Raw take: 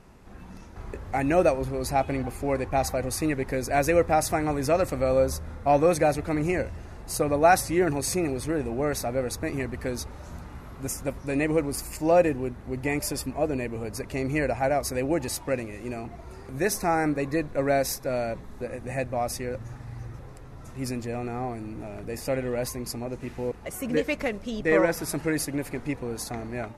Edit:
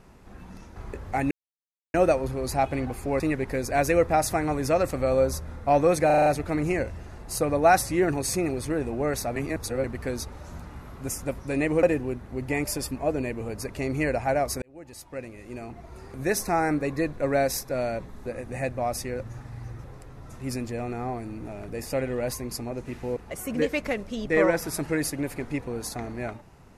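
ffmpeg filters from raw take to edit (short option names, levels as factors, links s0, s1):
-filter_complex "[0:a]asplit=12[s0][s1][s2][s3][s4][s5][s6][s7][s8][s9][s10][s11];[s0]atrim=end=1.31,asetpts=PTS-STARTPTS,afade=t=out:st=1.306:d=0.004:c=hsin,apad=pad_dur=0.63[s12];[s1]atrim=start=1.31:end=2.572,asetpts=PTS-STARTPTS,afade=t=in:d=0.004:c=hsin[s13];[s2]atrim=start=3.188:end=6.092[s14];[s3]atrim=start=6.048:end=6.092[s15];[s4]atrim=start=6.048:end=6.092[s16];[s5]atrim=start=6.048:end=6.092[s17];[s6]atrim=start=6.048:end=6.092[s18];[s7]atrim=start=6.048:end=9.152[s19];[s8]atrim=start=9.148:end=9.632,asetpts=PTS-STARTPTS,areverse[s20];[s9]atrim=start=9.628:end=11.622[s21];[s10]atrim=start=12.178:end=14.97,asetpts=PTS-STARTPTS,afade=t=out:st=2.788:d=0.004:c=hsin[s22];[s11]atrim=start=14.97,asetpts=PTS-STARTPTS,afade=t=in:d=1.51[s23];[s12][s13]concat=n=2:v=0:a=1[s24];[s24][s14]acrossfade=d=0.004:c1=hsin:c2=hsin[s25];[s25][s15]acrossfade=d=0.004:c1=hsin:c2=hsin[s26];[s26][s16]acrossfade=d=0.004:c1=hsin:c2=hsin[s27];[s27][s17]acrossfade=d=0.004:c1=hsin:c2=hsin[s28];[s28][s18]acrossfade=d=0.004:c1=hsin:c2=hsin[s29];[s29][s19]acrossfade=d=0.004:c1=hsin:c2=hsin[s30];[s30][s20]acrossfade=d=0.004:c1=hsin:c2=hsin[s31];[s31][s21]acrossfade=d=0.004:c1=hsin:c2=hsin[s32];[s22][s23]concat=n=2:v=0:a=1[s33];[s32][s33]acrossfade=d=0.004:c1=hsin:c2=hsin"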